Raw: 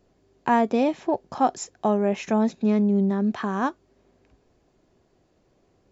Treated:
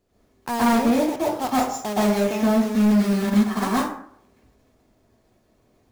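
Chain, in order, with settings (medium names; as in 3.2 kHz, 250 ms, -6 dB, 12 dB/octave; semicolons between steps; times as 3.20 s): block-companded coder 3-bit; plate-style reverb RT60 0.63 s, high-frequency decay 0.55×, pre-delay 110 ms, DRR -8.5 dB; hard clipper -6.5 dBFS, distortion -12 dB; 3.27–3.69 s: transient shaper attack +7 dB, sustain -6 dB; trim -7.5 dB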